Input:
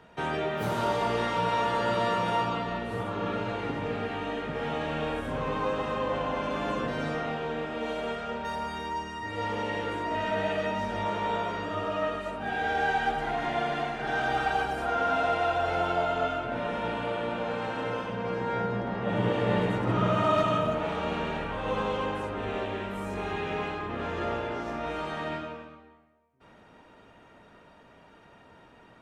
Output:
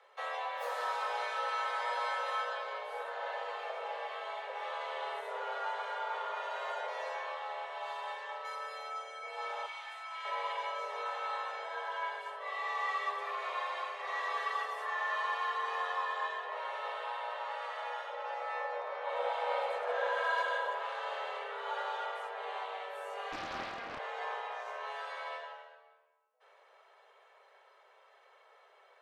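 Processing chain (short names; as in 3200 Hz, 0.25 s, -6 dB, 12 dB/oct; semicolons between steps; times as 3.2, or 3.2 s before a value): 9.66–10.25 HPF 1200 Hz 6 dB/oct; frequency shift +370 Hz; 23.32–23.99 Doppler distortion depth 0.5 ms; gain -8 dB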